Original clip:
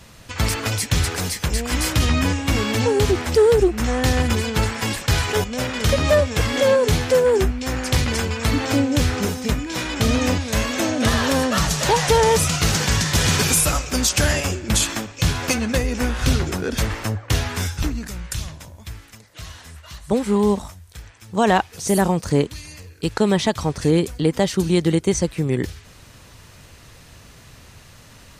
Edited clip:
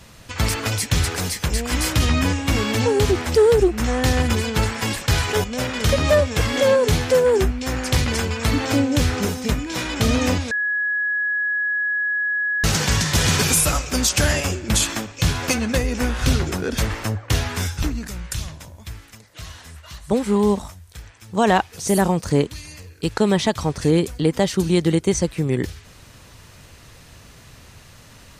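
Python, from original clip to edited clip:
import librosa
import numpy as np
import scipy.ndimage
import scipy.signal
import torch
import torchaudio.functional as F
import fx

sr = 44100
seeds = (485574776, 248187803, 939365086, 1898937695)

y = fx.edit(x, sr, fx.bleep(start_s=10.51, length_s=2.13, hz=1680.0, db=-19.0), tone=tone)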